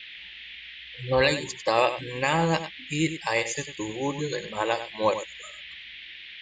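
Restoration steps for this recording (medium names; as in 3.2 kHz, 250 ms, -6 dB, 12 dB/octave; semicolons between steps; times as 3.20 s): noise print and reduce 28 dB; inverse comb 97 ms -11 dB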